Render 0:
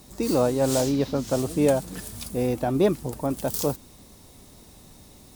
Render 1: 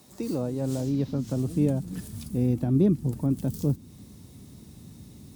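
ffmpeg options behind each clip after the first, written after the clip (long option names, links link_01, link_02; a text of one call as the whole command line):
ffmpeg -i in.wav -filter_complex "[0:a]asubboost=boost=7.5:cutoff=240,highpass=110,acrossover=split=460[link_01][link_02];[link_02]acompressor=threshold=-40dB:ratio=2.5[link_03];[link_01][link_03]amix=inputs=2:normalize=0,volume=-4.5dB" out.wav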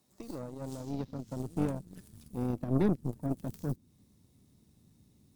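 ffmpeg -i in.wav -af "aeval=exprs='0.282*(cos(1*acos(clip(val(0)/0.282,-1,1)))-cos(1*PI/2))+0.0447*(cos(4*acos(clip(val(0)/0.282,-1,1)))-cos(4*PI/2))+0.00447*(cos(5*acos(clip(val(0)/0.282,-1,1)))-cos(5*PI/2))+0.0316*(cos(7*acos(clip(val(0)/0.282,-1,1)))-cos(7*PI/2))':channel_layout=same,volume=-6.5dB" out.wav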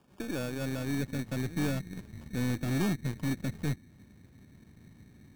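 ffmpeg -i in.wav -af "aresample=11025,asoftclip=type=tanh:threshold=-34.5dB,aresample=44100,acrusher=samples=22:mix=1:aa=0.000001,volume=9dB" out.wav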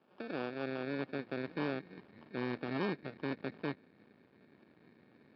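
ffmpeg -i in.wav -af "aresample=11025,aeval=exprs='max(val(0),0)':channel_layout=same,aresample=44100,highpass=270,lowpass=3000,volume=3.5dB" out.wav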